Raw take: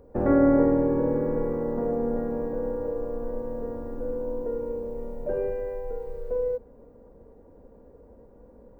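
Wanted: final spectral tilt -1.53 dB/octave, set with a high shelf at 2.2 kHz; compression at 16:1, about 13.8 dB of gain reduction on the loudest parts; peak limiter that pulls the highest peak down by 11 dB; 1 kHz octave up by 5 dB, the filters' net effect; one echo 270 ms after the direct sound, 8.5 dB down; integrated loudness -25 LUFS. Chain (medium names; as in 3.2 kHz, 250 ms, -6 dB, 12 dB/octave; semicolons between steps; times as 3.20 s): peaking EQ 1 kHz +8 dB; treble shelf 2.2 kHz -7.5 dB; compression 16:1, threshold -28 dBFS; peak limiter -31 dBFS; delay 270 ms -8.5 dB; trim +14 dB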